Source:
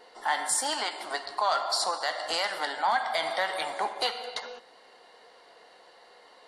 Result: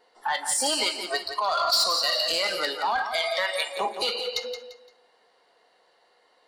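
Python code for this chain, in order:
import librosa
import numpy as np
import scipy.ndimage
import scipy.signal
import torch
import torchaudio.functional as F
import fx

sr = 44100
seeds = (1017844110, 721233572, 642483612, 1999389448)

p1 = fx.highpass(x, sr, hz=630.0, slope=6, at=(3.02, 3.77))
p2 = fx.noise_reduce_blind(p1, sr, reduce_db=18)
p3 = fx.peak_eq(p2, sr, hz=3700.0, db=12.0, octaves=1.8, at=(1.57, 2.32))
p4 = fx.over_compress(p3, sr, threshold_db=-32.0, ratio=-0.5)
p5 = p3 + F.gain(torch.from_numpy(p4), 1.0).numpy()
p6 = 10.0 ** (-16.0 / 20.0) * np.tanh(p5 / 10.0 ** (-16.0 / 20.0))
y = p6 + fx.echo_feedback(p6, sr, ms=172, feedback_pct=30, wet_db=-9.5, dry=0)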